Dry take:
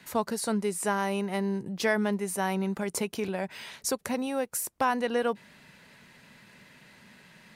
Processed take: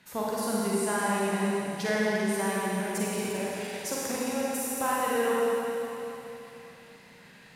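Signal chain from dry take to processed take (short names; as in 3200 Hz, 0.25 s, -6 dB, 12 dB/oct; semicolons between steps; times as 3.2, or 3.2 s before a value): wow and flutter 53 cents; Schroeder reverb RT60 3.4 s, DRR -6.5 dB; gain -6 dB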